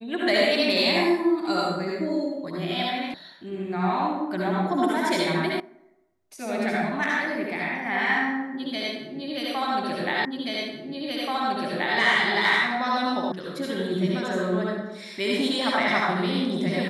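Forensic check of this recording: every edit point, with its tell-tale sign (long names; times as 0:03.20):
0:03.14: cut off before it has died away
0:05.60: cut off before it has died away
0:10.25: the same again, the last 1.73 s
0:13.32: cut off before it has died away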